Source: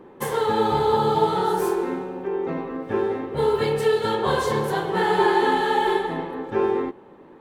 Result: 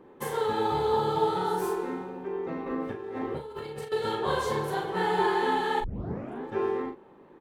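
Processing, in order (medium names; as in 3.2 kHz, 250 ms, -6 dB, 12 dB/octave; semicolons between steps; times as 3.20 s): 2.66–3.92 s: compressor with a negative ratio -30 dBFS, ratio -1; 5.80 s: tape start 0.63 s; doubling 39 ms -6 dB; trim -7 dB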